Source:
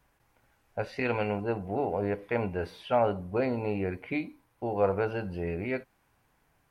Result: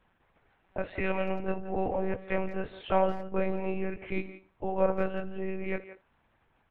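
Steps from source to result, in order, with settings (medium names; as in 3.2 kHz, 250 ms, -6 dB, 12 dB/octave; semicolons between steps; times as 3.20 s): monotone LPC vocoder at 8 kHz 190 Hz; speakerphone echo 170 ms, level -13 dB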